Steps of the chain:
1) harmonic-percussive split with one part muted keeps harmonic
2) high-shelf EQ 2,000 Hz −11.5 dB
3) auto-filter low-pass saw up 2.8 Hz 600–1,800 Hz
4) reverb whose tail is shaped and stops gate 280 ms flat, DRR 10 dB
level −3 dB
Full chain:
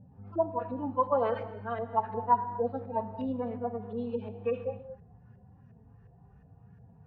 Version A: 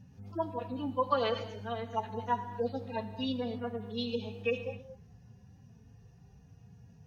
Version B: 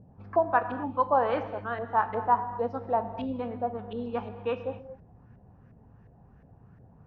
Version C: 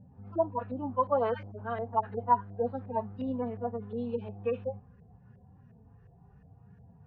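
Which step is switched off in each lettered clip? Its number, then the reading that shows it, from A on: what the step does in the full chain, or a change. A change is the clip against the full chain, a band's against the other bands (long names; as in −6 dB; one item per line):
3, 2 kHz band +6.5 dB
1, 2 kHz band +10.0 dB
4, 125 Hz band +1.5 dB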